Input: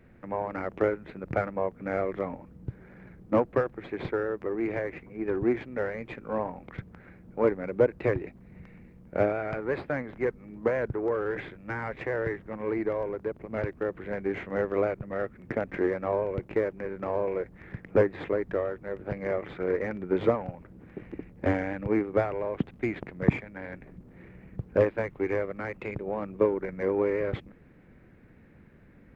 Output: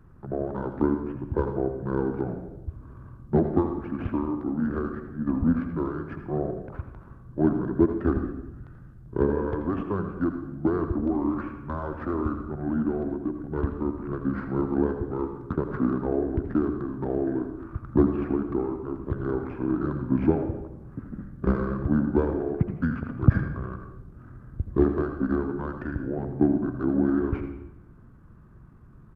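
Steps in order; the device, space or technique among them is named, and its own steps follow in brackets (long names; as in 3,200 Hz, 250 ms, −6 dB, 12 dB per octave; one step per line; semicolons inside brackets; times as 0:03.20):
monster voice (pitch shifter −6.5 semitones; low-shelf EQ 210 Hz +6 dB; single-tap delay 83 ms −13 dB; convolution reverb RT60 0.90 s, pre-delay 67 ms, DRR 8 dB)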